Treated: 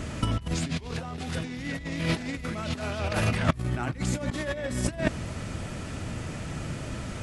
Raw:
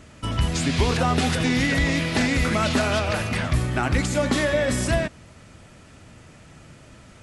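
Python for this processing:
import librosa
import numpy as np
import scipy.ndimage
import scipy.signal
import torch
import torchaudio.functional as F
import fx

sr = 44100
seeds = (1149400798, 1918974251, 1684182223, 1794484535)

y = fx.low_shelf(x, sr, hz=460.0, db=4.0)
y = fx.over_compress(y, sr, threshold_db=-27.0, ratio=-0.5)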